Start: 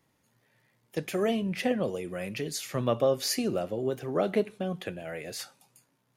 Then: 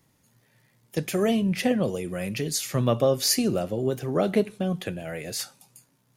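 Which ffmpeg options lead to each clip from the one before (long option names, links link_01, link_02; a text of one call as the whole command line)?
ffmpeg -i in.wav -af "bass=frequency=250:gain=6,treble=frequency=4000:gain=6,volume=2.5dB" out.wav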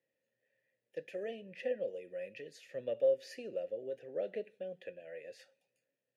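ffmpeg -i in.wav -filter_complex "[0:a]asplit=3[link_01][link_02][link_03];[link_01]bandpass=frequency=530:width_type=q:width=8,volume=0dB[link_04];[link_02]bandpass=frequency=1840:width_type=q:width=8,volume=-6dB[link_05];[link_03]bandpass=frequency=2480:width_type=q:width=8,volume=-9dB[link_06];[link_04][link_05][link_06]amix=inputs=3:normalize=0,volume=-5.5dB" out.wav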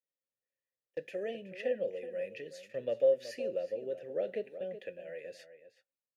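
ffmpeg -i in.wav -filter_complex "[0:a]agate=range=-21dB:threshold=-57dB:ratio=16:detection=peak,asplit=2[link_01][link_02];[link_02]adelay=373.2,volume=-12dB,highshelf=frequency=4000:gain=-8.4[link_03];[link_01][link_03]amix=inputs=2:normalize=0,volume=3dB" out.wav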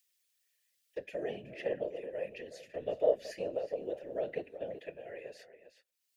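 ffmpeg -i in.wav -filter_complex "[0:a]acrossover=split=370|2000[link_01][link_02][link_03];[link_03]acompressor=mode=upward:threshold=-59dB:ratio=2.5[link_04];[link_01][link_02][link_04]amix=inputs=3:normalize=0,afftfilt=real='hypot(re,im)*cos(2*PI*random(0))':imag='hypot(re,im)*sin(2*PI*random(1))':win_size=512:overlap=0.75,volume=5dB" out.wav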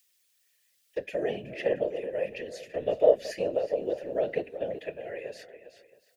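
ffmpeg -i in.wav -af "aecho=1:1:673:0.0891,volume=7.5dB" out.wav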